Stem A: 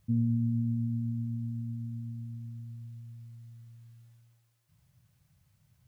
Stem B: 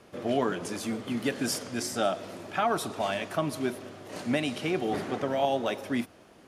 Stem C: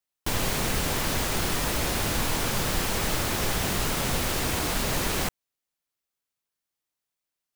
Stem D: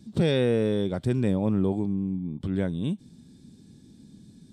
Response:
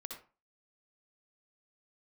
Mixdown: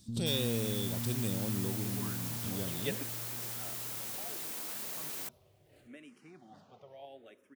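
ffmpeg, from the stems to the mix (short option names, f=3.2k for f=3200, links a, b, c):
-filter_complex "[0:a]alimiter=level_in=6dB:limit=-24dB:level=0:latency=1:release=14,volume=-6dB,volume=-2.5dB[a];[1:a]dynaudnorm=f=150:g=11:m=12.5dB,asplit=2[b][c];[c]afreqshift=-0.71[d];[b][d]amix=inputs=2:normalize=1,adelay=1600,volume=-17dB[e];[2:a]highpass=240,aemphasis=mode=production:type=50kf,volume=-20dB[f];[3:a]aexciter=amount=6.4:drive=4.9:freq=2.8k,volume=-13dB,asplit=2[g][h];[h]apad=whole_len=356311[i];[e][i]sidechaingate=range=-16dB:threshold=-49dB:ratio=16:detection=peak[j];[a][j][f][g]amix=inputs=4:normalize=0"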